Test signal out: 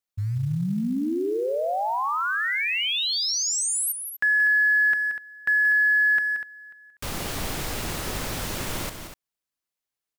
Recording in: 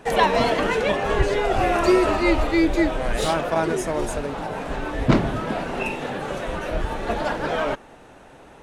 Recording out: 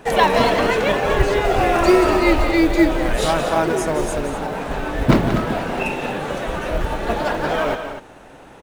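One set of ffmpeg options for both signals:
-af "aecho=1:1:177.8|244.9:0.316|0.282,acrusher=bits=8:mode=log:mix=0:aa=0.000001,volume=3dB"

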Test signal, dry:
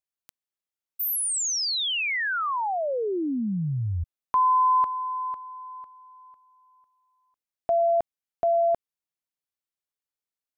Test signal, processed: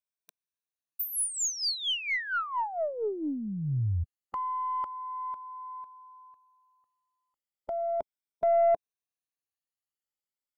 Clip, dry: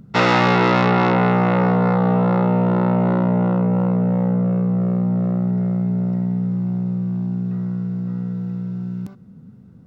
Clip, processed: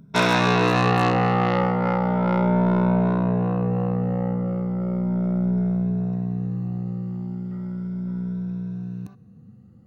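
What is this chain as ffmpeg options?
-af "afftfilt=real='re*pow(10,12/40*sin(2*PI*(1.6*log(max(b,1)*sr/1024/100)/log(2)-(0.36)*(pts-256)/sr)))':imag='im*pow(10,12/40*sin(2*PI*(1.6*log(max(b,1)*sr/1024/100)/log(2)-(0.36)*(pts-256)/sr)))':win_size=1024:overlap=0.75,aeval=exprs='0.891*(cos(1*acos(clip(val(0)/0.891,-1,1)))-cos(1*PI/2))+0.1*(cos(3*acos(clip(val(0)/0.891,-1,1)))-cos(3*PI/2))+0.0355*(cos(4*acos(clip(val(0)/0.891,-1,1)))-cos(4*PI/2))+0.0282*(cos(6*acos(clip(val(0)/0.891,-1,1)))-cos(6*PI/2))+0.0141*(cos(7*acos(clip(val(0)/0.891,-1,1)))-cos(7*PI/2))':c=same,aeval=exprs='0.562*(abs(mod(val(0)/0.562+3,4)-2)-1)':c=same,volume=-1.5dB"

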